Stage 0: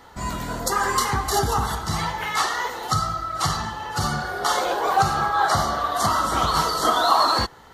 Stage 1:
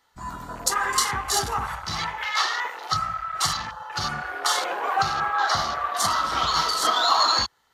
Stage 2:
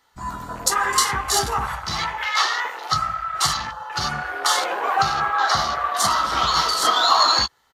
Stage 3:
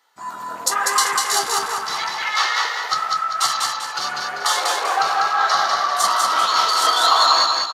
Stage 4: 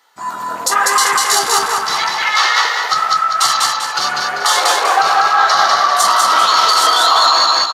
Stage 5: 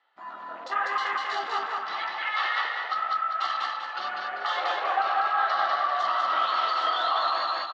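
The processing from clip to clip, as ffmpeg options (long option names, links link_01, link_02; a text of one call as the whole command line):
ffmpeg -i in.wav -af "tiltshelf=frequency=1100:gain=-7,afwtdn=0.0355,volume=-2.5dB" out.wav
ffmpeg -i in.wav -filter_complex "[0:a]asplit=2[link_01][link_02];[link_02]adelay=15,volume=-11dB[link_03];[link_01][link_03]amix=inputs=2:normalize=0,volume=3dB" out.wav
ffmpeg -i in.wav -filter_complex "[0:a]highpass=410,asplit=2[link_01][link_02];[link_02]aecho=0:1:196|392|588|784|980:0.708|0.276|0.108|0.042|0.0164[link_03];[link_01][link_03]amix=inputs=2:normalize=0" out.wav
ffmpeg -i in.wav -af "alimiter=level_in=8.5dB:limit=-1dB:release=50:level=0:latency=1,volume=-1dB" out.wav
ffmpeg -i in.wav -af "highpass=390,equalizer=frequency=450:width_type=q:width=4:gain=-9,equalizer=frequency=970:width_type=q:width=4:gain=-9,equalizer=frequency=1500:width_type=q:width=4:gain=-5,equalizer=frequency=2300:width_type=q:width=4:gain=-6,lowpass=frequency=2900:width=0.5412,lowpass=frequency=2900:width=1.3066,volume=-8.5dB" out.wav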